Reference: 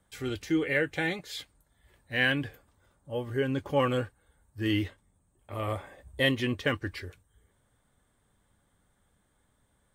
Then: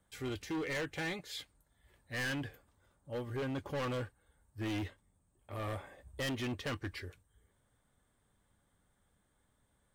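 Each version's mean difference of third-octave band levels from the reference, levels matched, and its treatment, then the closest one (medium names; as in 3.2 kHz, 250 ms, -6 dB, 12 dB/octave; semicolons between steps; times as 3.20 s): 5.0 dB: hard clipper -29.5 dBFS, distortion -7 dB; trim -4.5 dB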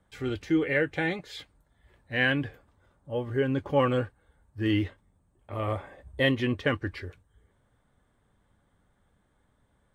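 3.0 dB: low-pass 2.4 kHz 6 dB/octave; trim +2.5 dB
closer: second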